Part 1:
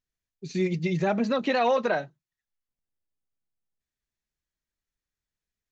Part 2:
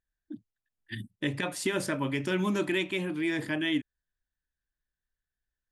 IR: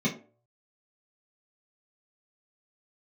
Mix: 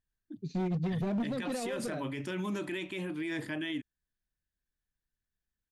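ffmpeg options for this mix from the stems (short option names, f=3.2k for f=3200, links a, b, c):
-filter_complex "[0:a]firequalizer=gain_entry='entry(200,0);entry(880,-18);entry(3900,-10);entry(5600,-16)':delay=0.05:min_phase=1,volume=28dB,asoftclip=hard,volume=-28dB,volume=0.5dB[a];[1:a]volume=-4dB[b];[a][b]amix=inputs=2:normalize=0,alimiter=level_in=4dB:limit=-24dB:level=0:latency=1:release=28,volume=-4dB"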